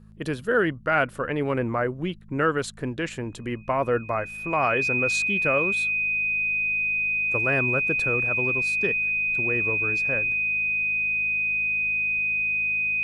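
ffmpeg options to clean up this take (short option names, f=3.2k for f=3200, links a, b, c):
-af "bandreject=f=53:t=h:w=4,bandreject=f=106:t=h:w=4,bandreject=f=159:t=h:w=4,bandreject=f=212:t=h:w=4,bandreject=f=2.5k:w=30"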